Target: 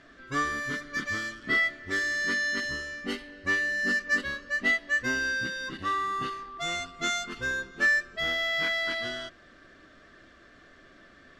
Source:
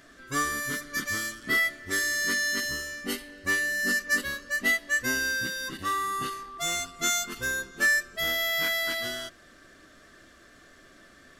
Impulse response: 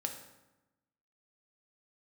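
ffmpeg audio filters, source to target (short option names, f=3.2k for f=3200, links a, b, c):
-af "lowpass=4k"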